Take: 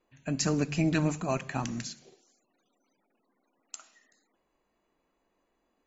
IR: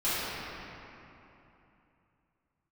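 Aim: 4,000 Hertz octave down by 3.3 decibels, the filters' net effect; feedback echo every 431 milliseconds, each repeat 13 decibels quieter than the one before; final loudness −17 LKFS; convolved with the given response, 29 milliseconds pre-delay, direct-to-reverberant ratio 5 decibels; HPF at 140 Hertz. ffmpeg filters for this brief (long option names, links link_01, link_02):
-filter_complex "[0:a]highpass=140,equalizer=frequency=4000:width_type=o:gain=-4.5,aecho=1:1:431|862|1293:0.224|0.0493|0.0108,asplit=2[link_01][link_02];[1:a]atrim=start_sample=2205,adelay=29[link_03];[link_02][link_03]afir=irnorm=-1:irlink=0,volume=-17.5dB[link_04];[link_01][link_04]amix=inputs=2:normalize=0,volume=14dB"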